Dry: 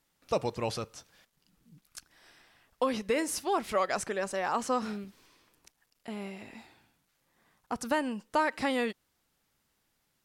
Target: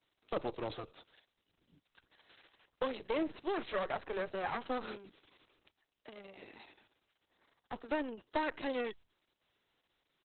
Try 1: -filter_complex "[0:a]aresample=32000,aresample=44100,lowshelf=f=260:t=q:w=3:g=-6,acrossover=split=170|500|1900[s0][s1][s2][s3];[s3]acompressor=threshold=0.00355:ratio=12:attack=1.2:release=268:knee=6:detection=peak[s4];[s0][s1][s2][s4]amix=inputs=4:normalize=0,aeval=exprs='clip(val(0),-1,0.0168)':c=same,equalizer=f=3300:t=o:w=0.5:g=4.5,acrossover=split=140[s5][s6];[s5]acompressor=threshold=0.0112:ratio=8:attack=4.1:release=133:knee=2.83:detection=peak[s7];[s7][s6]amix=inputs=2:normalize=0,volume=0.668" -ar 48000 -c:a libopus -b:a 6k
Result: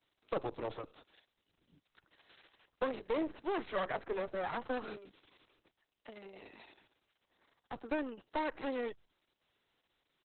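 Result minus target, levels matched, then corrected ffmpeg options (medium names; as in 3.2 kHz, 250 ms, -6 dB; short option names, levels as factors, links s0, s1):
compression: peak gain reduction +9 dB
-filter_complex "[0:a]aresample=32000,aresample=44100,lowshelf=f=260:t=q:w=3:g=-6,acrossover=split=170|500|1900[s0][s1][s2][s3];[s3]acompressor=threshold=0.0112:ratio=12:attack=1.2:release=268:knee=6:detection=peak[s4];[s0][s1][s2][s4]amix=inputs=4:normalize=0,aeval=exprs='clip(val(0),-1,0.0168)':c=same,equalizer=f=3300:t=o:w=0.5:g=4.5,acrossover=split=140[s5][s6];[s5]acompressor=threshold=0.0112:ratio=8:attack=4.1:release=133:knee=2.83:detection=peak[s7];[s7][s6]amix=inputs=2:normalize=0,volume=0.668" -ar 48000 -c:a libopus -b:a 6k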